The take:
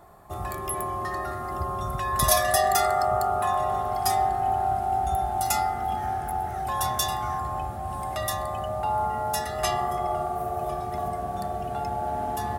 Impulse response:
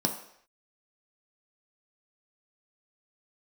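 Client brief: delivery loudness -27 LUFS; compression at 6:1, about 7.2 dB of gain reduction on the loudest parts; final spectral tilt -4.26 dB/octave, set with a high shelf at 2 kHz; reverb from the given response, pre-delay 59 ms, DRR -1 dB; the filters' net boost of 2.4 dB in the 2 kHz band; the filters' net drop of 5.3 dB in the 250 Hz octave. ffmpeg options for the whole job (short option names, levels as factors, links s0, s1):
-filter_complex "[0:a]equalizer=f=250:t=o:g=-9,highshelf=f=2000:g=-3,equalizer=f=2000:t=o:g=4.5,acompressor=threshold=0.0501:ratio=6,asplit=2[s0][s1];[1:a]atrim=start_sample=2205,adelay=59[s2];[s1][s2]afir=irnorm=-1:irlink=0,volume=0.473[s3];[s0][s3]amix=inputs=2:normalize=0"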